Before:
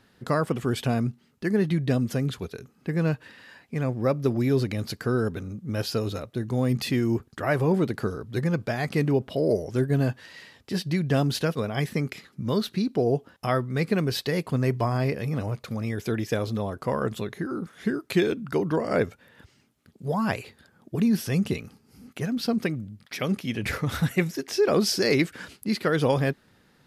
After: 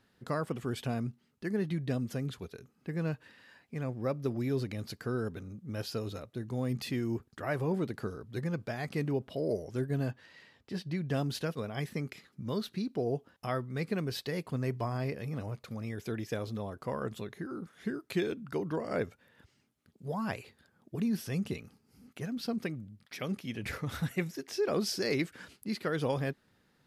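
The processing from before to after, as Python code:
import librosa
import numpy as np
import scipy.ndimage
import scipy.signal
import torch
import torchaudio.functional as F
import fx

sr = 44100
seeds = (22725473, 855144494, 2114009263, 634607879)

y = fx.high_shelf(x, sr, hz=5900.0, db=-10.0, at=(10.11, 11.09))
y = F.gain(torch.from_numpy(y), -9.0).numpy()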